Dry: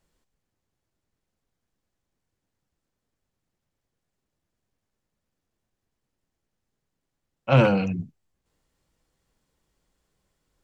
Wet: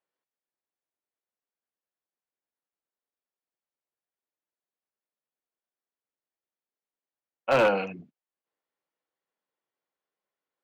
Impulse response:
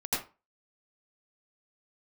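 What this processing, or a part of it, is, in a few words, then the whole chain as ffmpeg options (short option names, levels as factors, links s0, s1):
walkie-talkie: -af "highpass=450,lowpass=2900,asoftclip=type=hard:threshold=0.141,agate=range=0.224:threshold=0.002:ratio=16:detection=peak,volume=1.26"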